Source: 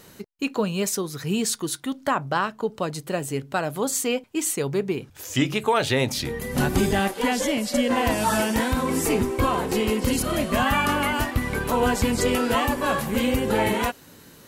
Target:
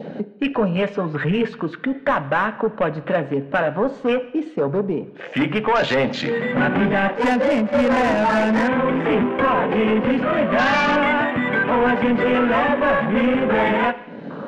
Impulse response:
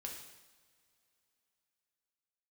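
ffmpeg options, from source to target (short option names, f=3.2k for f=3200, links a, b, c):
-filter_complex "[0:a]acompressor=mode=upward:threshold=-24dB:ratio=2.5,highpass=f=170:w=0.5412,highpass=f=170:w=1.3066,equalizer=f=360:t=q:w=4:g=-7,equalizer=f=580:t=q:w=4:g=4,equalizer=f=1.6k:t=q:w=4:g=6,lowpass=f=3.5k:w=0.5412,lowpass=f=3.5k:w=1.3066,asettb=1/sr,asplit=3[a][b][c];[a]atrim=end=0.764[d];[b]atrim=start=0.76:end=1.59,asetpts=PTS-STARTPTS,afade=t=in:d=0.004:c=qsin,afade=t=out:st=0.826:d=0.004:c=qsin,aecho=1:1:6.8:0.56,atrim=end_sample=36603[e];[c]atrim=start=1.586[f];[d][e]acrossfade=d=0.004:c1=hsin:c2=qsin[g];[g][f]acrossfade=d=0.004:c1=qsin:c2=hsin,adynamicequalizer=threshold=0.0178:dfrequency=1400:dqfactor=2.2:tfrequency=1400:tqfactor=2.2:attack=5:release=100:ratio=0.375:range=2.5:mode=cutabove:tftype=bell,asoftclip=type=tanh:threshold=-23dB,afwtdn=0.0141,asplit=2[h][i];[1:a]atrim=start_sample=2205,lowpass=4.1k[j];[i][j]afir=irnorm=-1:irlink=0,volume=-5.5dB[k];[h][k]amix=inputs=2:normalize=0,asettb=1/sr,asplit=3[l][m][n];[l]atrim=end=7.154[o];[m]atrim=start=7.15:end=8.68,asetpts=PTS-STARTPTS,afade=t=in:d=0.004:c=qsin,afade=t=out:st=1.526:d=0.004:c=qsin,adynamicsmooth=sensitivity=4:basefreq=1.6k[p];[n]atrim=start=8.676[q];[o][p]acrossfade=d=0.004:c1=hsin:c2=qsin[r];[r][q]acrossfade=d=0.004:c1=qsin:c2=hsin,volume=7.5dB"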